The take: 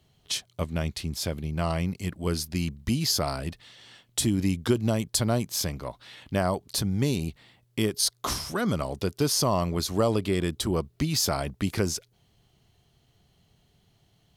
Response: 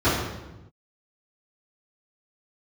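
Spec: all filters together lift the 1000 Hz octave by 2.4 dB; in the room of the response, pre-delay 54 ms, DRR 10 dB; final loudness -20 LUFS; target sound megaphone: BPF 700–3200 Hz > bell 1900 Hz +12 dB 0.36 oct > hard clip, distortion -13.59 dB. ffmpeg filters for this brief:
-filter_complex "[0:a]equalizer=f=1k:t=o:g=4,asplit=2[a][b];[1:a]atrim=start_sample=2205,adelay=54[c];[b][c]afir=irnorm=-1:irlink=0,volume=-29.5dB[d];[a][d]amix=inputs=2:normalize=0,highpass=700,lowpass=3.2k,equalizer=f=1.9k:t=o:w=0.36:g=12,asoftclip=type=hard:threshold=-22dB,volume=13.5dB"

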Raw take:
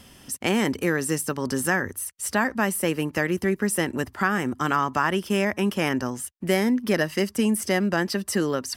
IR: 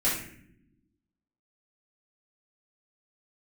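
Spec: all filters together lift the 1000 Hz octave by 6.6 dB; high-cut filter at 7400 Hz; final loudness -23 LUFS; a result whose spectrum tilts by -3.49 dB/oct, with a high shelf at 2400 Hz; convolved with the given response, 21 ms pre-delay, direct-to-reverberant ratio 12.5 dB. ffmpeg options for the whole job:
-filter_complex "[0:a]lowpass=7.4k,equalizer=f=1k:t=o:g=6.5,highshelf=f=2.4k:g=9,asplit=2[a][b];[1:a]atrim=start_sample=2205,adelay=21[c];[b][c]afir=irnorm=-1:irlink=0,volume=-23dB[d];[a][d]amix=inputs=2:normalize=0,volume=-2dB"

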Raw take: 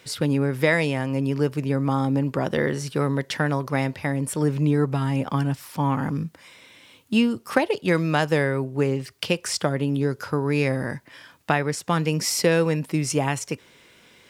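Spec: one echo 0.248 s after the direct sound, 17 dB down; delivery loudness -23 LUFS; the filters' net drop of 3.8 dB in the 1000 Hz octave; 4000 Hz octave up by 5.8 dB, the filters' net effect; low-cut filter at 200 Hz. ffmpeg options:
-af "highpass=200,equalizer=f=1k:t=o:g=-5.5,equalizer=f=4k:t=o:g=8.5,aecho=1:1:248:0.141,volume=2dB"

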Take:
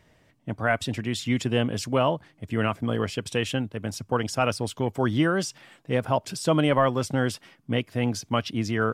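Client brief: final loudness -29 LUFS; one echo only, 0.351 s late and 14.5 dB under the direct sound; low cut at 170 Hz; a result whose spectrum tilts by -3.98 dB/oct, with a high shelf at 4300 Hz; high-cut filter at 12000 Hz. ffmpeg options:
-af "highpass=170,lowpass=12k,highshelf=f=4.3k:g=7,aecho=1:1:351:0.188,volume=-2.5dB"

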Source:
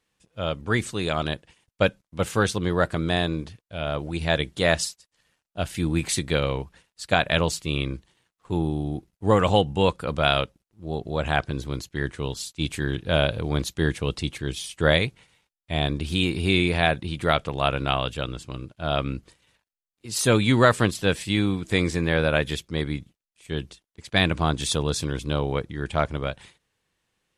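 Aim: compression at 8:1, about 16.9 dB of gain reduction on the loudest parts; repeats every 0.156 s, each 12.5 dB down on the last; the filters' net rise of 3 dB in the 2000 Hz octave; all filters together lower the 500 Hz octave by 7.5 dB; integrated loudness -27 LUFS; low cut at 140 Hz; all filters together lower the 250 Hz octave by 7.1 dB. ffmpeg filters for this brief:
-af "highpass=140,equalizer=f=250:t=o:g=-7,equalizer=f=500:t=o:g=-8,equalizer=f=2k:t=o:g=4.5,acompressor=threshold=-33dB:ratio=8,aecho=1:1:156|312|468:0.237|0.0569|0.0137,volume=10.5dB"

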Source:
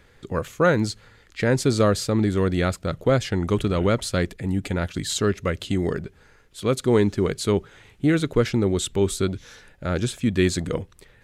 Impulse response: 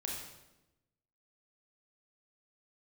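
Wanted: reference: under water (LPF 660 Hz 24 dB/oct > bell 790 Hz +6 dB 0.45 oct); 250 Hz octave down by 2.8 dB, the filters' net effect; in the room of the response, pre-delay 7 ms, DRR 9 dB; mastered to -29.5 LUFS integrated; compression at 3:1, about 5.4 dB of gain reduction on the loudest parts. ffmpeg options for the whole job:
-filter_complex "[0:a]equalizer=f=250:t=o:g=-4,acompressor=threshold=-22dB:ratio=3,asplit=2[a][b];[1:a]atrim=start_sample=2205,adelay=7[c];[b][c]afir=irnorm=-1:irlink=0,volume=-10dB[d];[a][d]amix=inputs=2:normalize=0,lowpass=f=660:w=0.5412,lowpass=f=660:w=1.3066,equalizer=f=790:t=o:w=0.45:g=6,volume=-1dB"

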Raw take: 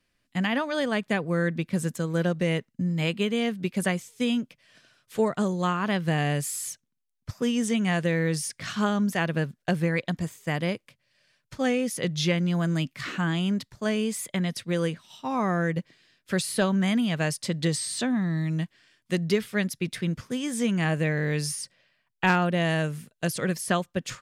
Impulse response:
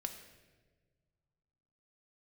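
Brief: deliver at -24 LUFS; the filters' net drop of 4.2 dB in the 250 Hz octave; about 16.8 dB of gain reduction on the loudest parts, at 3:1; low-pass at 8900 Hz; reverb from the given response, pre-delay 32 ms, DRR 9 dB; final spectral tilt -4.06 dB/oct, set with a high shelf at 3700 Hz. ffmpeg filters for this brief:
-filter_complex "[0:a]lowpass=8.9k,equalizer=f=250:t=o:g=-6.5,highshelf=f=3.7k:g=4,acompressor=threshold=-44dB:ratio=3,asplit=2[a][b];[1:a]atrim=start_sample=2205,adelay=32[c];[b][c]afir=irnorm=-1:irlink=0,volume=-7.5dB[d];[a][d]amix=inputs=2:normalize=0,volume=18dB"

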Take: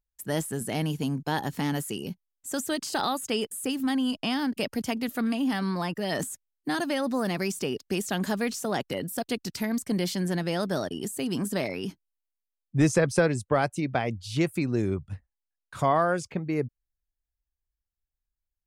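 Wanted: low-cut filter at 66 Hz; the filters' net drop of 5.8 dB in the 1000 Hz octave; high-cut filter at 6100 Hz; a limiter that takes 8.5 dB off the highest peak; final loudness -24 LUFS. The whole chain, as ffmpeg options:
-af "highpass=66,lowpass=6.1k,equalizer=f=1k:t=o:g=-8.5,volume=7.5dB,alimiter=limit=-12.5dB:level=0:latency=1"

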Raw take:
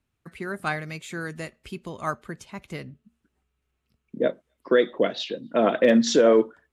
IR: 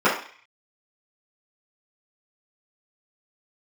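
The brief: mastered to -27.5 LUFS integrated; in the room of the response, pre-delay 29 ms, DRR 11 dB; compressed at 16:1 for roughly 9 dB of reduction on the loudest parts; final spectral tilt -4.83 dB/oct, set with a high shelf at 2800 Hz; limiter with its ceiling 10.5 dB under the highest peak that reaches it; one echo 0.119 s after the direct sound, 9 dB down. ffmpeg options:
-filter_complex "[0:a]highshelf=f=2.8k:g=-4,acompressor=threshold=-22dB:ratio=16,alimiter=limit=-23.5dB:level=0:latency=1,aecho=1:1:119:0.355,asplit=2[a][b];[1:a]atrim=start_sample=2205,adelay=29[c];[b][c]afir=irnorm=-1:irlink=0,volume=-32dB[d];[a][d]amix=inputs=2:normalize=0,volume=7dB"

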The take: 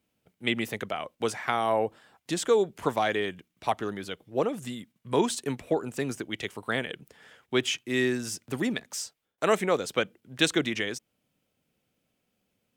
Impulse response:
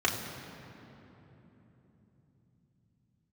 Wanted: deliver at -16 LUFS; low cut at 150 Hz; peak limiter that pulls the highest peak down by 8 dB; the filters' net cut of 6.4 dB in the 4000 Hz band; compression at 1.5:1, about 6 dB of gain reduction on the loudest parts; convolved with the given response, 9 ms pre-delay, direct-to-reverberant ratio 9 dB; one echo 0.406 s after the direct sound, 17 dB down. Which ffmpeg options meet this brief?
-filter_complex "[0:a]highpass=150,equalizer=f=4k:t=o:g=-8.5,acompressor=threshold=-35dB:ratio=1.5,alimiter=limit=-24dB:level=0:latency=1,aecho=1:1:406:0.141,asplit=2[a][b];[1:a]atrim=start_sample=2205,adelay=9[c];[b][c]afir=irnorm=-1:irlink=0,volume=-20.5dB[d];[a][d]amix=inputs=2:normalize=0,volume=20dB"

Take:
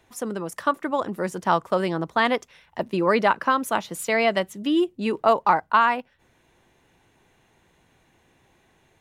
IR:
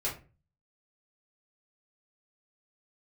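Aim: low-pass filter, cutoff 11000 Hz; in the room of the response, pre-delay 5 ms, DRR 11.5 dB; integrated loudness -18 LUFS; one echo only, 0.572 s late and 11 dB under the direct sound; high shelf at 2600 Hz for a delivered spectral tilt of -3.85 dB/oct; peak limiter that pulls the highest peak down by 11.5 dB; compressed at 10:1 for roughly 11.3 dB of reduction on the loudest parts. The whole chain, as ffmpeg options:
-filter_complex "[0:a]lowpass=11k,highshelf=f=2.6k:g=5.5,acompressor=threshold=-24dB:ratio=10,alimiter=limit=-23dB:level=0:latency=1,aecho=1:1:572:0.282,asplit=2[a][b];[1:a]atrim=start_sample=2205,adelay=5[c];[b][c]afir=irnorm=-1:irlink=0,volume=-16.5dB[d];[a][d]amix=inputs=2:normalize=0,volume=15.5dB"

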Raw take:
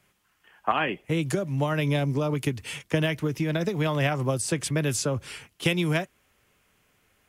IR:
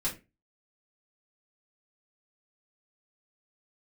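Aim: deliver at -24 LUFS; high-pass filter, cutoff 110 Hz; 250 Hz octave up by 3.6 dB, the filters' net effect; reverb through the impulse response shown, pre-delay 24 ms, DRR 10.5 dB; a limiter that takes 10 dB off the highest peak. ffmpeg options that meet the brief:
-filter_complex "[0:a]highpass=110,equalizer=f=250:t=o:g=6,alimiter=limit=-19dB:level=0:latency=1,asplit=2[a][b];[1:a]atrim=start_sample=2205,adelay=24[c];[b][c]afir=irnorm=-1:irlink=0,volume=-15.5dB[d];[a][d]amix=inputs=2:normalize=0,volume=4dB"

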